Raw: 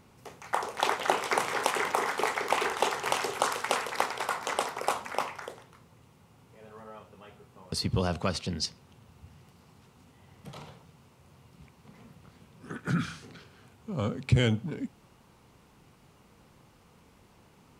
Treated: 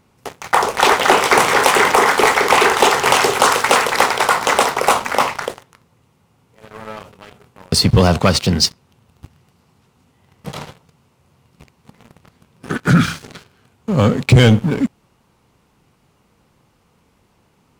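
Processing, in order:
leveller curve on the samples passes 3
0:06.79–0:07.78: level that may fall only so fast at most 110 dB per second
level +6.5 dB

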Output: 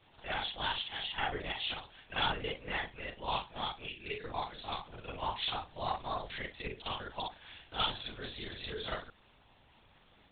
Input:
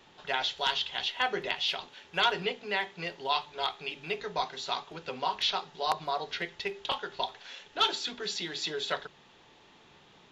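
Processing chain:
every overlapping window played backwards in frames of 112 ms
gain on a spectral selection 0:03.91–0:04.24, 580–1,400 Hz −27 dB
linear-prediction vocoder at 8 kHz whisper
level −2 dB

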